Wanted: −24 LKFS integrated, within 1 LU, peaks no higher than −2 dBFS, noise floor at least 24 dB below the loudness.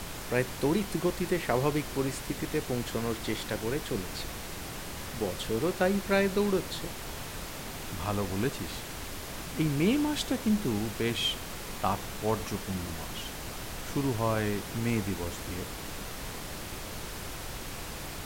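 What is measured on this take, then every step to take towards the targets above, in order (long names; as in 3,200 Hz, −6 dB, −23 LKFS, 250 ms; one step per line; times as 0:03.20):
background noise floor −40 dBFS; target noise floor −56 dBFS; integrated loudness −32.0 LKFS; sample peak −12.0 dBFS; target loudness −24.0 LKFS
→ noise reduction from a noise print 16 dB
level +8 dB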